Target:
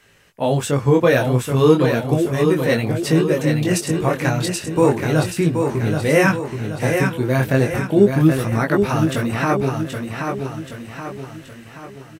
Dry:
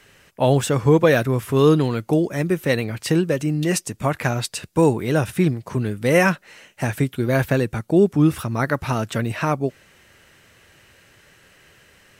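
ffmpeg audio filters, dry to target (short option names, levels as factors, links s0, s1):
-af "dynaudnorm=f=160:g=9:m=2,flanger=delay=18:depth=5.8:speed=0.35,aecho=1:1:777|1554|2331|3108|3885|4662:0.531|0.255|0.122|0.0587|0.0282|0.0135,volume=1.12"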